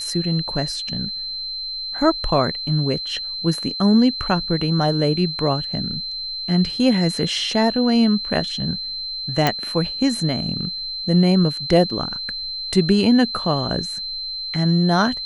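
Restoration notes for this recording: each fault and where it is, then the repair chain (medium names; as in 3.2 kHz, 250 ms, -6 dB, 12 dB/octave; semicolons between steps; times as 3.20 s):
whine 4.1 kHz -26 dBFS
9.47 s: pop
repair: de-click; band-stop 4.1 kHz, Q 30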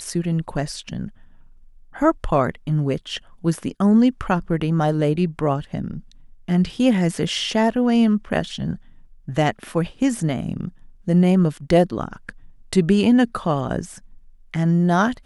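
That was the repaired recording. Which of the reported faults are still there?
nothing left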